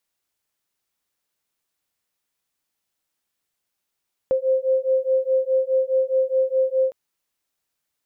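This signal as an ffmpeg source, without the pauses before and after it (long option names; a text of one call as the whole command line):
ffmpeg -f lavfi -i "aevalsrc='0.0944*(sin(2*PI*522*t)+sin(2*PI*526.8*t))':duration=2.61:sample_rate=44100" out.wav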